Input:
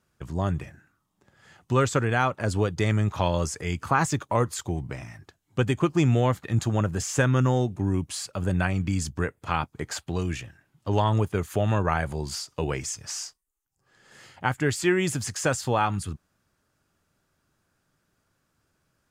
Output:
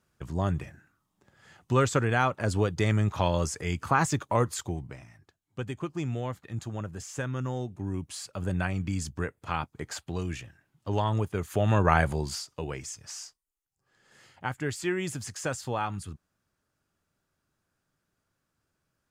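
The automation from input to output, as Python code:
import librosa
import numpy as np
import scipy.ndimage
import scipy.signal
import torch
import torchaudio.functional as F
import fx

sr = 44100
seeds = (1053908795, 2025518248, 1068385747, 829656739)

y = fx.gain(x, sr, db=fx.line((4.6, -1.5), (5.07, -11.0), (7.36, -11.0), (8.43, -4.5), (11.36, -4.5), (12.0, 4.0), (12.63, -7.0)))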